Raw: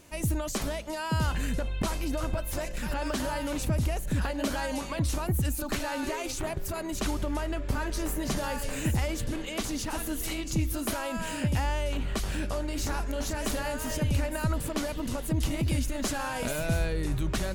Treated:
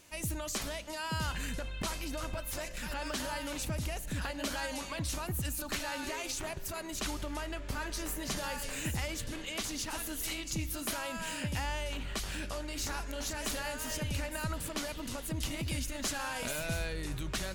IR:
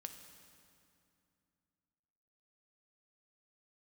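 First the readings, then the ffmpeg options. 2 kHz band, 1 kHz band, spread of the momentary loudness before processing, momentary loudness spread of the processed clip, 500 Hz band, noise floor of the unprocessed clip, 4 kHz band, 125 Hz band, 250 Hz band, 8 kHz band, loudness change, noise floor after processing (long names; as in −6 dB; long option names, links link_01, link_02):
−2.5 dB, −5.0 dB, 4 LU, 4 LU, −7.5 dB, −35 dBFS, −0.5 dB, −9.0 dB, −8.5 dB, −1.5 dB, −5.5 dB, −42 dBFS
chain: -filter_complex "[0:a]tiltshelf=frequency=1200:gain=-5,asplit=2[link_01][link_02];[1:a]atrim=start_sample=2205,lowpass=8000[link_03];[link_02][link_03]afir=irnorm=-1:irlink=0,volume=-5dB[link_04];[link_01][link_04]amix=inputs=2:normalize=0,volume=-6.5dB"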